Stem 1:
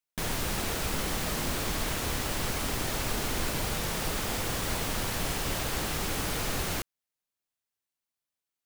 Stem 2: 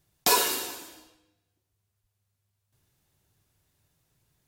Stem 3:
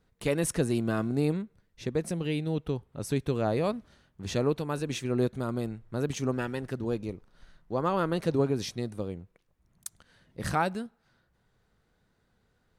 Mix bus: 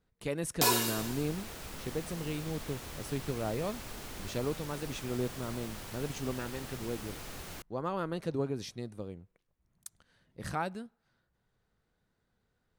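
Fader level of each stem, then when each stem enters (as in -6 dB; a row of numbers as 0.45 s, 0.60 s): -13.0 dB, -5.0 dB, -7.0 dB; 0.80 s, 0.35 s, 0.00 s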